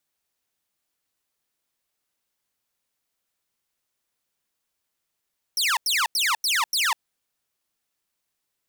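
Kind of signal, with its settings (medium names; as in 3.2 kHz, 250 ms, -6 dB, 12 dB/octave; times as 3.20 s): burst of laser zaps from 5.9 kHz, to 840 Hz, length 0.20 s saw, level -17 dB, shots 5, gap 0.09 s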